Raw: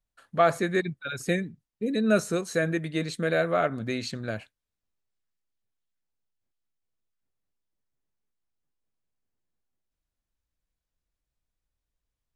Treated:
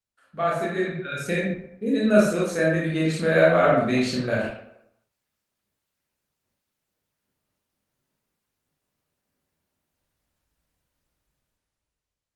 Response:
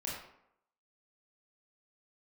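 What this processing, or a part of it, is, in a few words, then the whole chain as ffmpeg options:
far-field microphone of a smart speaker: -filter_complex "[1:a]atrim=start_sample=2205[link_01];[0:a][link_01]afir=irnorm=-1:irlink=0,highpass=frequency=99:poles=1,dynaudnorm=framelen=150:gausssize=13:maxgain=16.5dB,volume=-3.5dB" -ar 48000 -c:a libopus -b:a 24k

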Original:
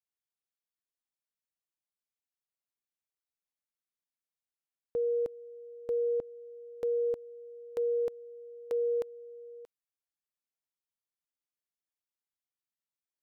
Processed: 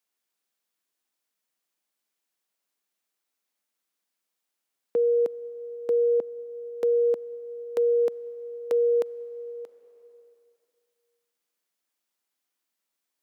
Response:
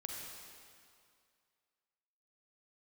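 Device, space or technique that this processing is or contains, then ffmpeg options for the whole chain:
ducked reverb: -filter_complex "[0:a]asplit=3[link_01][link_02][link_03];[1:a]atrim=start_sample=2205[link_04];[link_02][link_04]afir=irnorm=-1:irlink=0[link_05];[link_03]apad=whole_len=583093[link_06];[link_05][link_06]sidechaincompress=threshold=-48dB:ratio=6:attack=16:release=872,volume=-0.5dB[link_07];[link_01][link_07]amix=inputs=2:normalize=0,highpass=frequency=190:width=0.5412,highpass=frequency=190:width=1.3066,volume=7dB"

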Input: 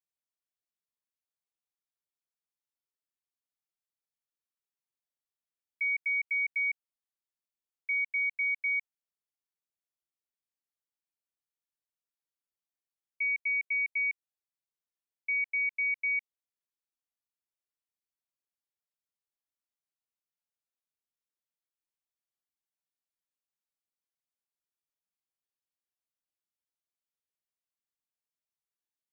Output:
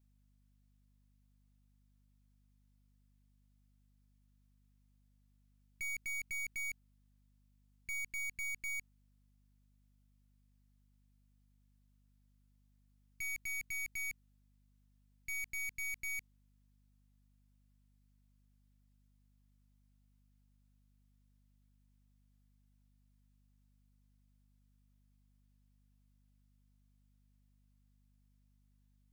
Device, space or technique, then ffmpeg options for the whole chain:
valve amplifier with mains hum: -af "aeval=exprs='(tanh(251*val(0)+0.6)-tanh(0.6))/251':channel_layout=same,aeval=exprs='val(0)+0.000126*(sin(2*PI*50*n/s)+sin(2*PI*2*50*n/s)/2+sin(2*PI*3*50*n/s)/3+sin(2*PI*4*50*n/s)/4+sin(2*PI*5*50*n/s)/5)':channel_layout=same,volume=8.5dB"

